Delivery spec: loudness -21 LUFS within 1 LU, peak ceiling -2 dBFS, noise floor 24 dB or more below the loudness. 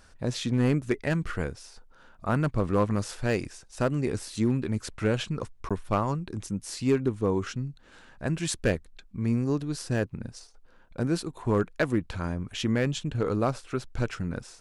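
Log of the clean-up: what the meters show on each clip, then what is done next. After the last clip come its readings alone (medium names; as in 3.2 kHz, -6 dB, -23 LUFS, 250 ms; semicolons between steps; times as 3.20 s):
clipped samples 0.3%; clipping level -16.0 dBFS; dropouts 1; longest dropout 16 ms; loudness -29.0 LUFS; peak level -16.0 dBFS; loudness target -21.0 LUFS
-> clip repair -16 dBFS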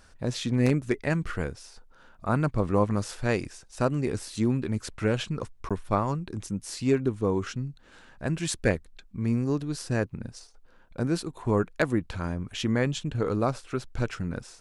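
clipped samples 0.0%; dropouts 1; longest dropout 16 ms
-> interpolate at 5.69 s, 16 ms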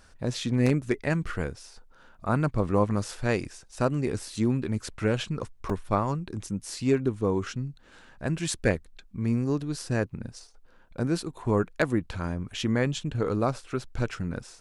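dropouts 0; loudness -29.0 LUFS; peak level -9.0 dBFS; loudness target -21.0 LUFS
-> trim +8 dB; peak limiter -2 dBFS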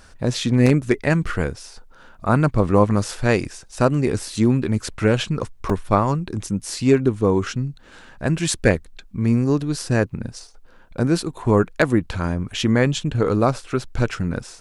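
loudness -21.0 LUFS; peak level -2.0 dBFS; noise floor -47 dBFS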